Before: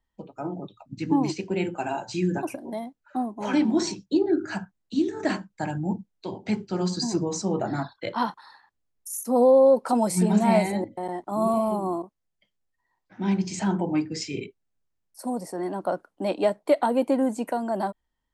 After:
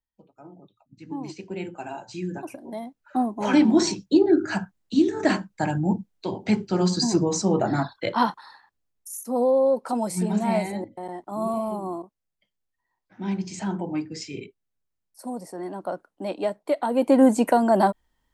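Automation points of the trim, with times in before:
0.99 s -14 dB
1.46 s -6 dB
2.43 s -6 dB
3.21 s +4.5 dB
8.25 s +4.5 dB
9.24 s -3.5 dB
16.82 s -3.5 dB
17.24 s +8.5 dB

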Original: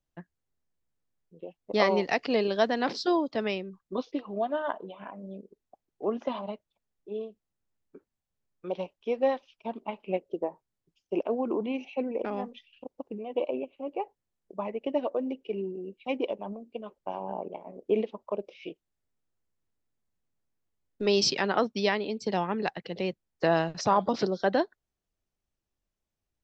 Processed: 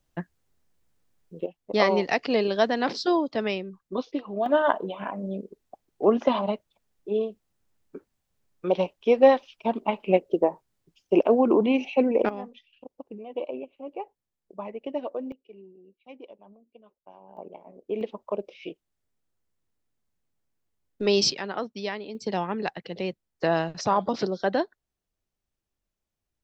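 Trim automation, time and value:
+11.5 dB
from 1.46 s +2.5 dB
from 4.46 s +9.5 dB
from 12.29 s -2.5 dB
from 15.32 s -15 dB
from 17.37 s -4.5 dB
from 18.01 s +2.5 dB
from 21.32 s -5.5 dB
from 22.15 s +0.5 dB

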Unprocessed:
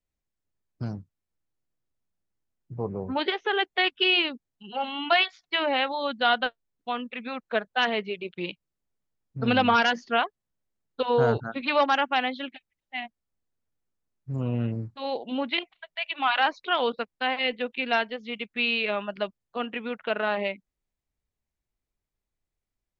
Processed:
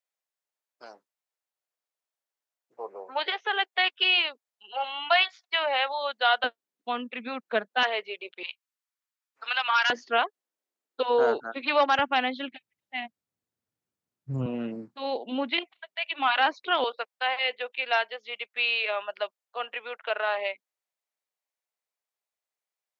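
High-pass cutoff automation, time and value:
high-pass 24 dB/octave
530 Hz
from 6.44 s 210 Hz
from 7.83 s 470 Hz
from 8.43 s 1 kHz
from 9.90 s 300 Hz
from 11.99 s 91 Hz
from 14.46 s 220 Hz
from 16.84 s 530 Hz

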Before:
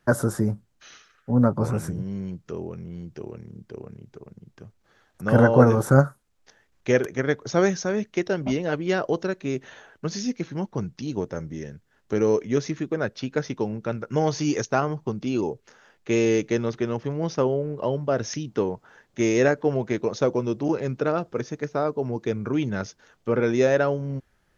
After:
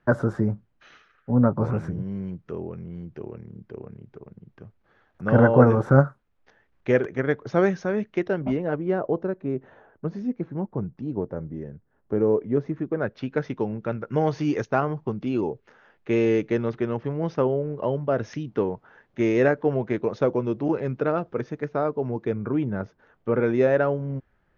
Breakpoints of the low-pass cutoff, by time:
8.22 s 2.4 kHz
8.97 s 1 kHz
12.69 s 1 kHz
13.25 s 2.5 kHz
22.09 s 2.5 kHz
22.79 s 1.2 kHz
23.34 s 2.1 kHz

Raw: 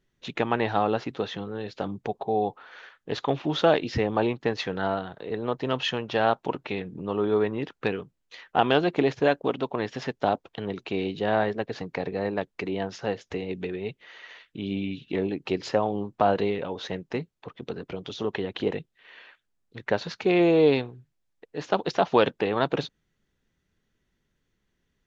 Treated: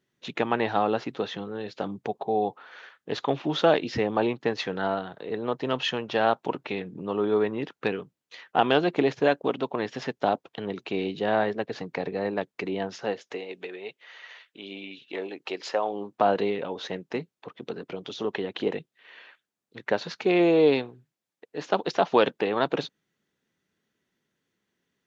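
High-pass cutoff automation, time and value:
12.90 s 140 Hz
13.51 s 520 Hz
15.76 s 520 Hz
16.26 s 180 Hz

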